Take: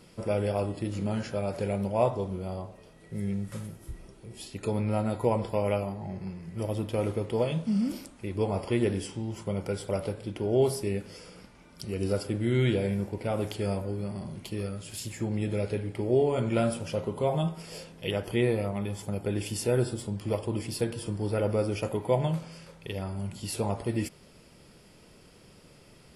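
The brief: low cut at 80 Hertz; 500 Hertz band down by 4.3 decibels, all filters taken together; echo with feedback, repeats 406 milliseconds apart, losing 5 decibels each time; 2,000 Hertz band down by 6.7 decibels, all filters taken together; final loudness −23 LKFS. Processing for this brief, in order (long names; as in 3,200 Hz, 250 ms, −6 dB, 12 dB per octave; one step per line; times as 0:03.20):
high-pass filter 80 Hz
parametric band 500 Hz −5 dB
parametric band 2,000 Hz −8.5 dB
repeating echo 406 ms, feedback 56%, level −5 dB
level +9 dB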